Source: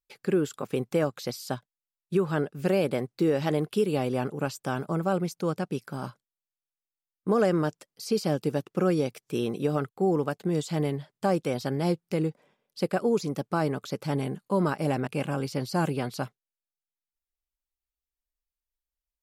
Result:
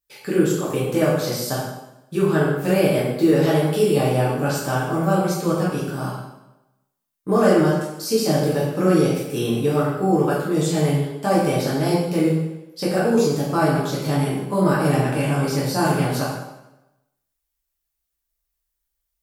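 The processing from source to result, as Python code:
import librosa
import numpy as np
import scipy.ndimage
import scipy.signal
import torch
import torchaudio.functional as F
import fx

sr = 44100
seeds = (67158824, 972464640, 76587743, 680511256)

y = fx.high_shelf(x, sr, hz=7500.0, db=8.5)
y = fx.rev_plate(y, sr, seeds[0], rt60_s=0.94, hf_ratio=0.85, predelay_ms=0, drr_db=-7.5)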